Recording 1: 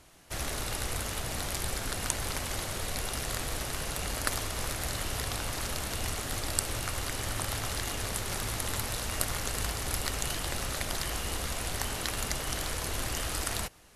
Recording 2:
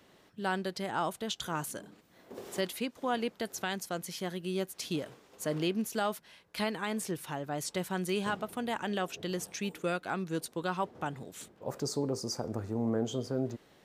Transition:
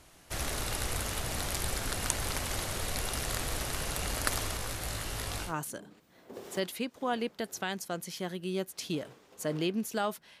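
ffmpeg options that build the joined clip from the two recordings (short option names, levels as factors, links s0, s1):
-filter_complex "[0:a]asettb=1/sr,asplit=3[s0][s1][s2];[s0]atrim=end=4.574[s3];[s1]atrim=start=4.57:end=5.54,asetpts=PTS-STARTPTS,afade=t=in:d=0.004:c=qsin,afade=t=out:st=0.966:d=0.004:c=qsin,flanger=delay=18.5:depth=2.9:speed=0.22[s4];[s2]atrim=start=5.536[s5];[s3][s4]acrossfade=d=0.004:c1=hsin:c2=qsin[s6];[s6][s5]acrossfade=d=0.004:c1=qsin:c2=hsin,apad=whole_dur=10.4,atrim=end=10.4,atrim=end=5.54,asetpts=PTS-STARTPTS[s7];[1:a]atrim=start=1.43:end=6.41,asetpts=PTS-STARTPTS[s8];[s7][s8]acrossfade=d=0.12:c1=tri:c2=tri"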